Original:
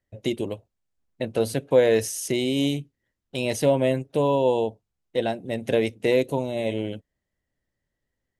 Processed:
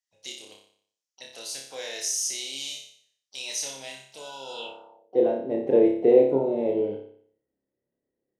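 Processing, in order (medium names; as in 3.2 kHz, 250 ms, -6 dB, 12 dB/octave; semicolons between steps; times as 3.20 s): harmony voices +7 st -16 dB; flutter echo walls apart 5.1 m, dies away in 0.58 s; band-pass sweep 5.8 kHz -> 380 Hz, 4.49–5.16 s; trim +5.5 dB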